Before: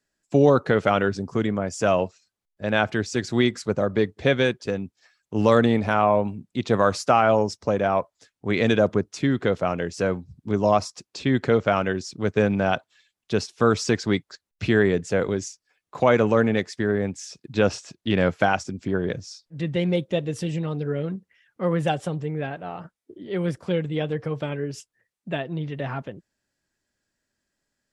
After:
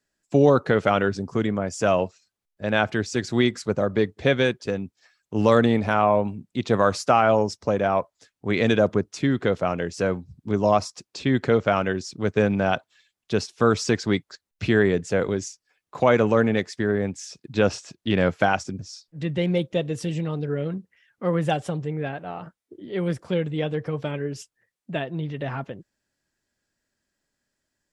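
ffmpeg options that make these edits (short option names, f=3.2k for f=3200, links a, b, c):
-filter_complex "[0:a]asplit=2[a][b];[a]atrim=end=18.792[c];[b]atrim=start=19.168[d];[c][d]acrossfade=d=0.004:c1=hsin:c2=hsin"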